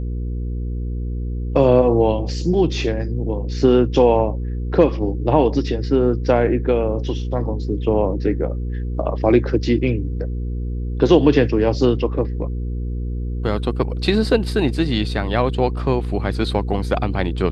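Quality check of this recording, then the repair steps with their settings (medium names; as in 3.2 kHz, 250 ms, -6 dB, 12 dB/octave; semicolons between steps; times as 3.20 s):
hum 60 Hz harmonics 8 -24 dBFS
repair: de-hum 60 Hz, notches 8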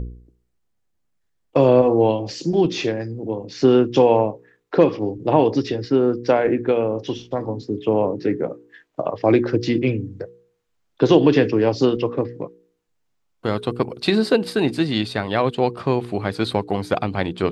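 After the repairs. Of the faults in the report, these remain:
nothing left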